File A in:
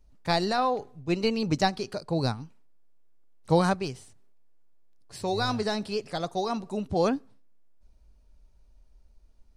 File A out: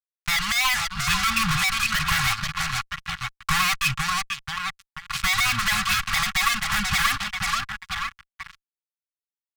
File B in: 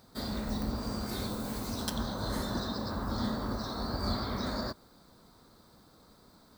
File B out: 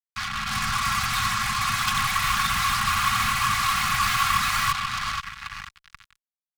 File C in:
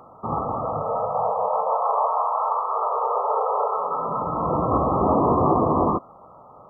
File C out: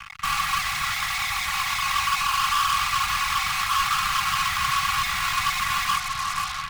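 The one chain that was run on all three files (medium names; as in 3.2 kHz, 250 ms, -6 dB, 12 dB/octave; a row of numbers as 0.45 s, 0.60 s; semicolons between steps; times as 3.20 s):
vowel filter a; reverb removal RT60 0.68 s; in parallel at +1.5 dB: peak limiter -27 dBFS; on the sum: graphic EQ 125/250/500 Hz +12/+3/+3 dB; level rider gain up to 11.5 dB; distance through air 77 m; compression 6:1, threshold -22 dBFS; on a send: feedback delay 485 ms, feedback 47%, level -11.5 dB; on the sum: fuzz box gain 41 dB, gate -43 dBFS; elliptic band-stop 150–1200 Hz, stop band 80 dB; comb 3.6 ms, depth 48%; normalise loudness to -23 LUFS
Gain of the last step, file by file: +0.5 dB, -2.0 dB, -5.0 dB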